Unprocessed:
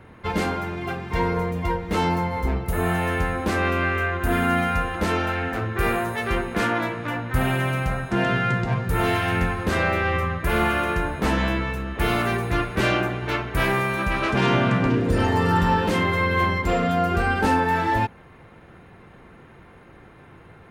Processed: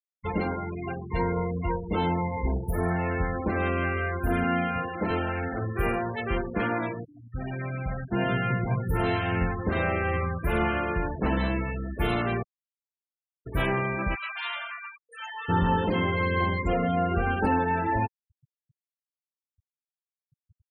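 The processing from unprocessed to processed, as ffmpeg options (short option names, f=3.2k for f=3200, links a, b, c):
-filter_complex "[0:a]asettb=1/sr,asplit=3[a][b][c];[a]atrim=end=4.444[d];[b]atrim=start=4.44:end=5.11,asetpts=PTS-STARTPTS,afade=t=in:d=0.004:c=qsin,afade=t=out:st=0.666:d=0.004:c=qsin,highpass=f=100:w=0.5412,highpass=f=100:w=1.3066[e];[c]atrim=start=5.106[f];[d][e]acrossfade=d=0.004:c1=hsin:c2=qsin[g];[g][f]acrossfade=d=0.004:c1=qsin:c2=hsin,asplit=3[h][i][j];[h]afade=t=out:st=14.14:d=0.02[k];[i]highpass=1.4k,afade=t=in:st=14.14:d=0.02,afade=t=out:st=15.48:d=0.02[l];[j]afade=t=in:st=15.48:d=0.02[m];[k][l][m]amix=inputs=3:normalize=0,asplit=4[n][o][p][q];[n]atrim=end=7.05,asetpts=PTS-STARTPTS,afade=t=out:st=7.046:d=0.004:c=hsin:silence=0.149624[r];[o]atrim=start=7.05:end=12.43,asetpts=PTS-STARTPTS,afade=t=in:d=1.25:silence=0.149624,afade=t=out:st=5.376:d=0.004:c=hsin[s];[p]atrim=start=12.43:end=13.46,asetpts=PTS-STARTPTS,volume=0[t];[q]atrim=start=13.46,asetpts=PTS-STARTPTS,afade=t=in:d=0.004:c=hsin[u];[r][s][t][u]concat=n=4:v=0:a=1,equalizer=f=1.5k:w=0.97:g=-3.5,bandreject=f=7.6k:w=19,afftfilt=real='re*gte(hypot(re,im),0.0501)':imag='im*gte(hypot(re,im),0.0501)':win_size=1024:overlap=0.75,volume=-3dB"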